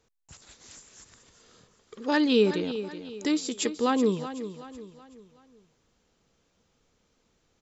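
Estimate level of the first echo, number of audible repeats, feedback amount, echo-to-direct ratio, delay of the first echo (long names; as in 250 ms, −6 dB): −12.0 dB, 3, 41%, −11.0 dB, 376 ms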